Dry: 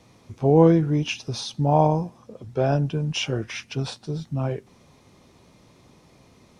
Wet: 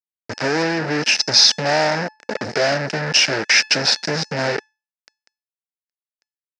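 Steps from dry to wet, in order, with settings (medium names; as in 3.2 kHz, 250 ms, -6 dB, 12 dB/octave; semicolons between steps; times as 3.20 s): peaking EQ 480 Hz -5.5 dB 0.25 oct; compression 8:1, threshold -31 dBFS, peak gain reduction 19 dB; fuzz box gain 43 dB, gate -43 dBFS; cabinet simulation 350–6100 Hz, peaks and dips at 360 Hz -7 dB, 740 Hz -3 dB, 1.1 kHz -10 dB, 1.7 kHz +7 dB, 3.3 kHz -9 dB, 5.1 kHz +10 dB; feedback comb 870 Hz, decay 0.33 s, mix 50%; trim +8.5 dB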